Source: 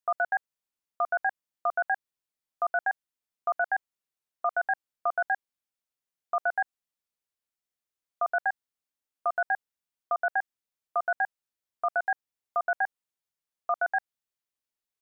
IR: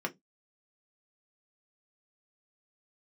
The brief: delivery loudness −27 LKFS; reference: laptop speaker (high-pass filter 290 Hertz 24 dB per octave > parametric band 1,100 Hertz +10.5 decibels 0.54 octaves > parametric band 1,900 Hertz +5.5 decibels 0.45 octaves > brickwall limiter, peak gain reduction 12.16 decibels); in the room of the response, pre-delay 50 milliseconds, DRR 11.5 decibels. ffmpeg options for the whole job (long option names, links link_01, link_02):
-filter_complex "[0:a]asplit=2[link_01][link_02];[1:a]atrim=start_sample=2205,adelay=50[link_03];[link_02][link_03]afir=irnorm=-1:irlink=0,volume=-16dB[link_04];[link_01][link_04]amix=inputs=2:normalize=0,highpass=frequency=290:width=0.5412,highpass=frequency=290:width=1.3066,equalizer=frequency=1100:width_type=o:width=0.54:gain=10.5,equalizer=frequency=1900:width_type=o:width=0.45:gain=5.5,volume=8dB,alimiter=limit=-16.5dB:level=0:latency=1"